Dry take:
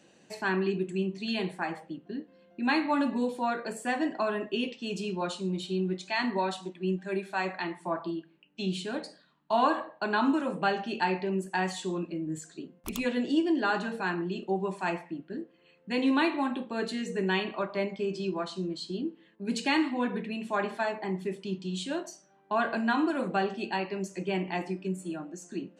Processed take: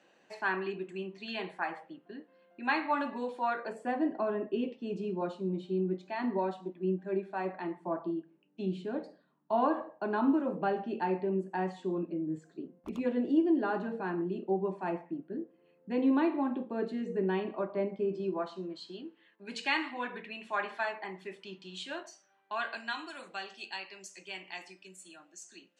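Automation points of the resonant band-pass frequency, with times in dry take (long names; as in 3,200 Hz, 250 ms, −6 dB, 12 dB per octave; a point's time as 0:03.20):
resonant band-pass, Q 0.67
0:03.55 1,200 Hz
0:03.97 370 Hz
0:18.11 370 Hz
0:19.07 1,800 Hz
0:22.04 1,800 Hz
0:23.09 5,300 Hz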